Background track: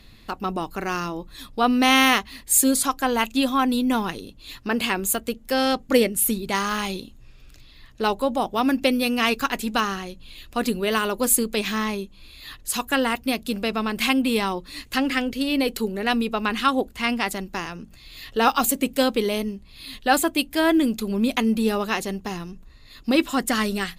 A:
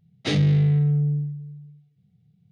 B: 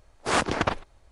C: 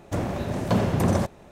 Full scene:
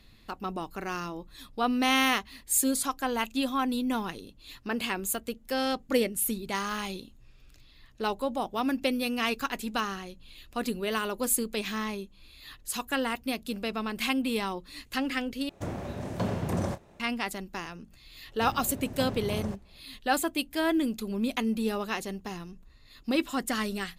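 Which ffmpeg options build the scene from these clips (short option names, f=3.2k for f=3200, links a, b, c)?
-filter_complex "[3:a]asplit=2[a][b];[0:a]volume=-7.5dB[c];[a]asplit=2[d][e];[e]adelay=29,volume=-12.5dB[f];[d][f]amix=inputs=2:normalize=0[g];[b]lowshelf=f=88:g=10[h];[c]asplit=2[i][j];[i]atrim=end=15.494[k];[g]atrim=end=1.51,asetpts=PTS-STARTPTS,volume=-8dB[l];[j]atrim=start=16.996[m];[h]atrim=end=1.51,asetpts=PTS-STARTPTS,volume=-15.5dB,afade=t=in:d=0.004:c=hsin,afade=t=out:st=1.506:d=0.004:c=hsin,adelay=18290[n];[k][l]acrossfade=d=0.004:c1=hsin:c2=hsin[o];[o][m]acrossfade=d=0.004:c1=hsin:c2=hsin[p];[p][n]amix=inputs=2:normalize=0"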